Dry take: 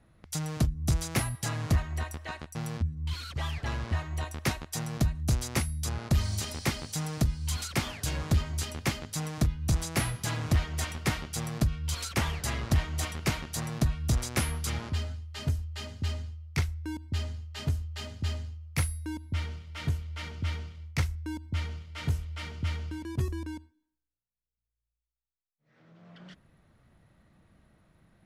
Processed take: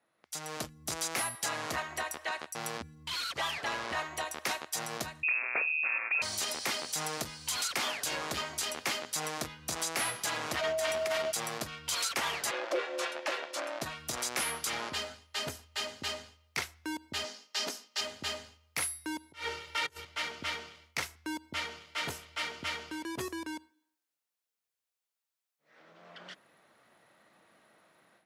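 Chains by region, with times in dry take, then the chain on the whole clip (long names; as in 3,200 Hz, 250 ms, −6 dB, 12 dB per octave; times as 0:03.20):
0:05.23–0:06.22: high-pass filter 120 Hz 6 dB per octave + voice inversion scrambler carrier 2,600 Hz
0:10.60–0:11.30: low-shelf EQ 97 Hz +8.5 dB + compressor whose output falls as the input rises −32 dBFS + steady tone 640 Hz −34 dBFS
0:12.51–0:13.82: ring modulation 440 Hz + resonant band-pass 1,500 Hz, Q 0.51
0:17.24–0:18.01: linear-phase brick-wall high-pass 170 Hz + parametric band 5,400 Hz +9 dB 0.71 octaves
0:19.32–0:20.05: compressor whose output falls as the input rises −36 dBFS, ratio −0.5 + comb filter 2.2 ms, depth 79%
whole clip: high-pass filter 480 Hz 12 dB per octave; automatic gain control gain up to 13.5 dB; brickwall limiter −15 dBFS; level −7 dB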